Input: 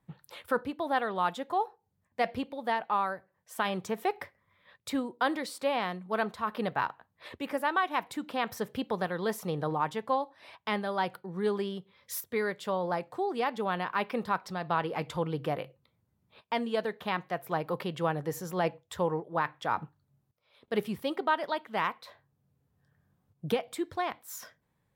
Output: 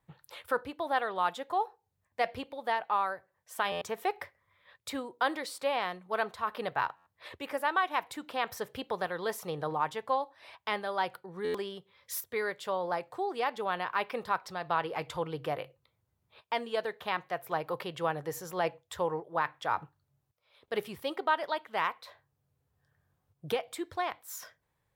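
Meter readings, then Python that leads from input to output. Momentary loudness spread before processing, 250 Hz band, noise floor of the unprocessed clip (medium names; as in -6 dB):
9 LU, -7.5 dB, -76 dBFS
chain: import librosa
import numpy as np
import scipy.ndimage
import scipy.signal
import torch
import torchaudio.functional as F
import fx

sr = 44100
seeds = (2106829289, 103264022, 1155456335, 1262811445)

y = fx.peak_eq(x, sr, hz=210.0, db=-11.0, octaves=1.1)
y = fx.buffer_glitch(y, sr, at_s=(3.71, 6.96, 11.44), block=512, repeats=8)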